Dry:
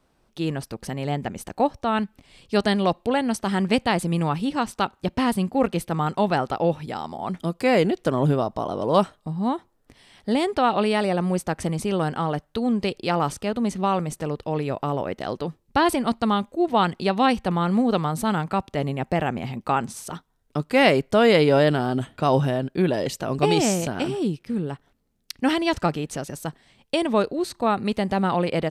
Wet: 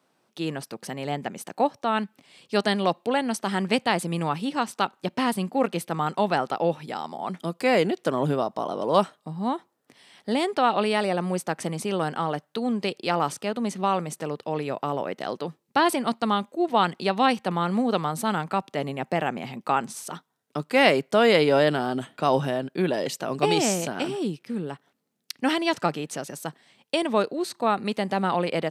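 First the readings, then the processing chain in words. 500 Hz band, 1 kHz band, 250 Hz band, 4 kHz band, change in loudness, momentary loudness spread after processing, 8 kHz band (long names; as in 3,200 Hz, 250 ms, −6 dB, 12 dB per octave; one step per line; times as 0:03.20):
−2.0 dB, −1.0 dB, −4.0 dB, 0.0 dB, −2.0 dB, 11 LU, 0.0 dB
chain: high-pass filter 140 Hz 24 dB per octave
low-shelf EQ 350 Hz −5.5 dB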